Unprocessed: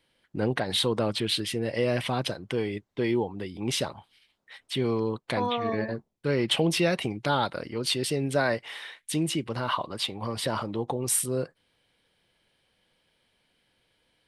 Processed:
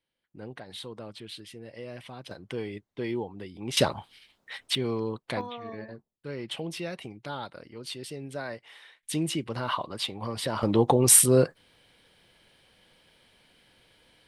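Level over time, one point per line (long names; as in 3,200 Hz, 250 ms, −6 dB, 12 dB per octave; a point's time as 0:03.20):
−15 dB
from 0:02.31 −5.5 dB
from 0:03.77 +7 dB
from 0:04.75 −3 dB
from 0:05.41 −11 dB
from 0:09.03 −1.5 dB
from 0:10.63 +9 dB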